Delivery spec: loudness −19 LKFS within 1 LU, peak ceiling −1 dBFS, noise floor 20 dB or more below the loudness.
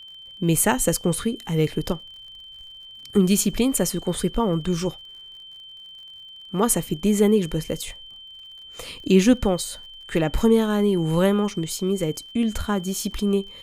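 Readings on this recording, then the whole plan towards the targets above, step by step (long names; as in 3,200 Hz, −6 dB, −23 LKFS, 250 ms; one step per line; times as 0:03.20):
crackle rate 48 per second; interfering tone 3,100 Hz; level of the tone −40 dBFS; integrated loudness −22.5 LKFS; sample peak −5.0 dBFS; target loudness −19.0 LKFS
→ click removal
notch filter 3,100 Hz, Q 30
level +3.5 dB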